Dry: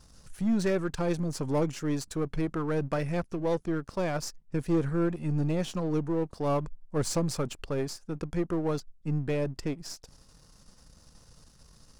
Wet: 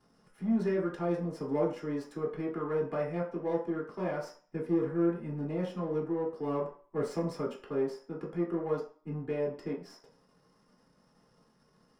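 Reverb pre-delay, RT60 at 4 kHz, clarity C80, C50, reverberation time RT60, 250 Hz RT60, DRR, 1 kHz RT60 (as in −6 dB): 3 ms, 0.45 s, 12.0 dB, 7.5 dB, 0.45 s, 0.40 s, −5.0 dB, 0.45 s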